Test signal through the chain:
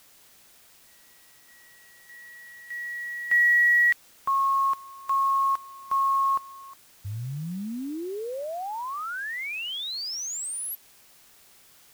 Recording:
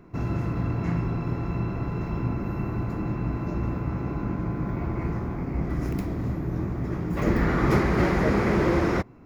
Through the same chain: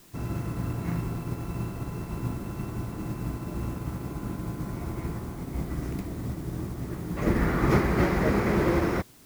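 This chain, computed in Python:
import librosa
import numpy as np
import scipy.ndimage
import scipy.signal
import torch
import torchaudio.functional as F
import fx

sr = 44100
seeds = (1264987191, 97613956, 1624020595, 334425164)

y = fx.quant_dither(x, sr, seeds[0], bits=8, dither='triangular')
y = fx.upward_expand(y, sr, threshold_db=-34.0, expansion=1.5)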